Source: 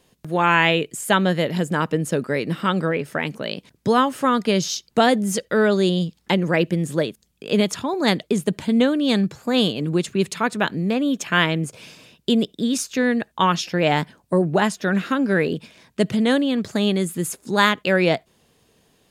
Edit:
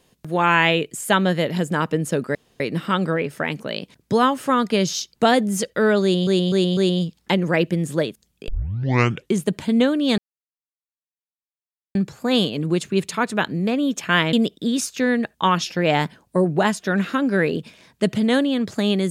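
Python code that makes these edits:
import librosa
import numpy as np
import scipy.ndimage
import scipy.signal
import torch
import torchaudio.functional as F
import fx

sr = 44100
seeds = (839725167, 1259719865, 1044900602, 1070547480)

y = fx.edit(x, sr, fx.insert_room_tone(at_s=2.35, length_s=0.25),
    fx.repeat(start_s=5.77, length_s=0.25, count=4),
    fx.tape_start(start_s=7.48, length_s=0.91),
    fx.insert_silence(at_s=9.18, length_s=1.77),
    fx.cut(start_s=11.56, length_s=0.74), tone=tone)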